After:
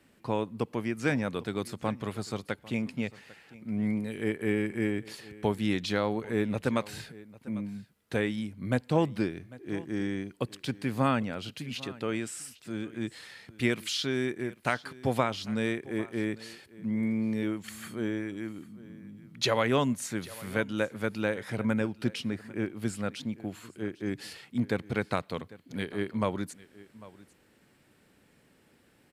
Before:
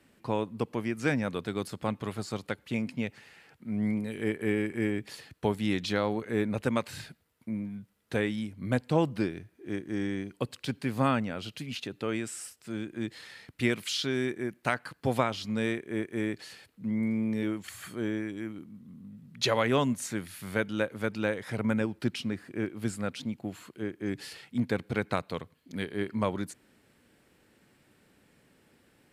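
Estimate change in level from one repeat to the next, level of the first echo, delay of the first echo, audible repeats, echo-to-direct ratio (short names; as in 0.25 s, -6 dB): no steady repeat, -20.0 dB, 0.798 s, 1, -20.0 dB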